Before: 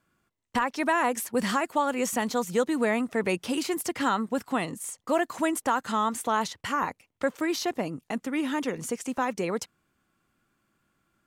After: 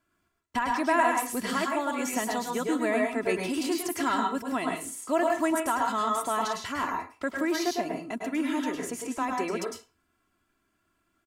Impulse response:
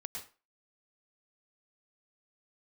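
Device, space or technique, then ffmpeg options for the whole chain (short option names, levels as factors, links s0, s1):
microphone above a desk: -filter_complex "[0:a]aecho=1:1:3:0.58[s0];[1:a]atrim=start_sample=2205[s1];[s0][s1]afir=irnorm=-1:irlink=0"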